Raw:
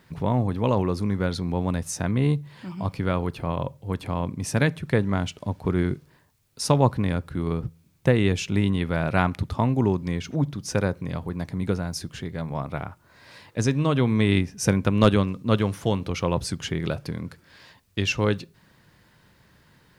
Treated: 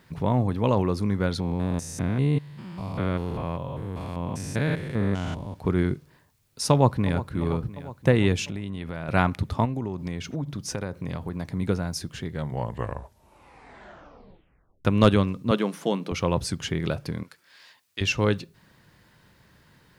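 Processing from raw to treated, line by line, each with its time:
1.40–5.56 s: spectrogram pixelated in time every 200 ms
6.71–7.27 s: echo throw 350 ms, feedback 70%, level -14 dB
8.44–9.09 s: compression 5:1, threshold -29 dBFS
9.65–11.46 s: compression 12:1, threshold -25 dBFS
12.24 s: tape stop 2.61 s
15.51–16.12 s: elliptic high-pass 160 Hz
17.23–18.01 s: high-pass 1.4 kHz 6 dB/octave

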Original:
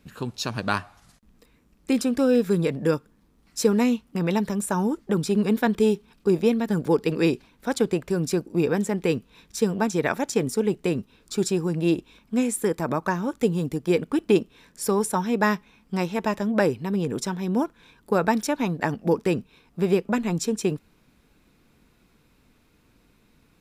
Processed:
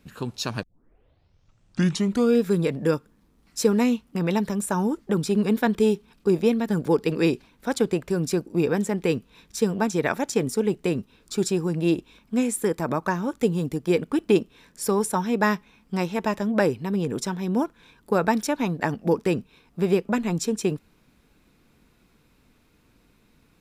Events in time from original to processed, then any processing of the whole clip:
0.63 s: tape start 1.78 s

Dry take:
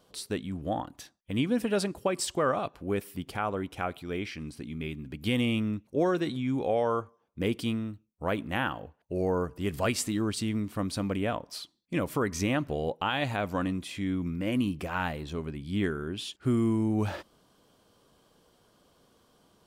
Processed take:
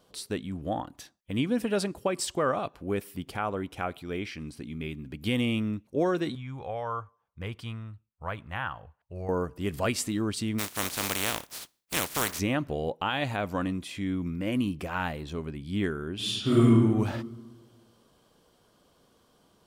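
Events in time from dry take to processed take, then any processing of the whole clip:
6.35–9.29 s: FFT filter 110 Hz 0 dB, 280 Hz -17 dB, 1.1 kHz 0 dB, 2.4 kHz -5 dB, 13 kHz -13 dB
10.58–12.38 s: spectral contrast reduction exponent 0.25
16.15–16.65 s: reverb throw, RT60 1.5 s, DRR -8.5 dB

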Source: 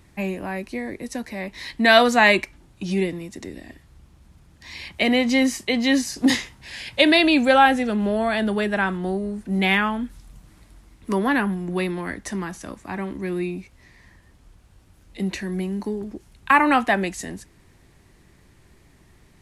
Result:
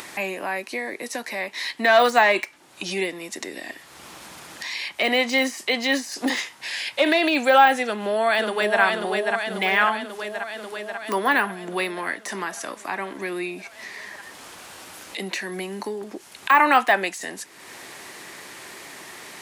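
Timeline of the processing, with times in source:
7.84–8.81 s: echo throw 540 ms, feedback 65%, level -4 dB
whole clip: de-esser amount 75%; Bessel high-pass 670 Hz, order 2; upward compressor, threshold -31 dBFS; trim +5.5 dB

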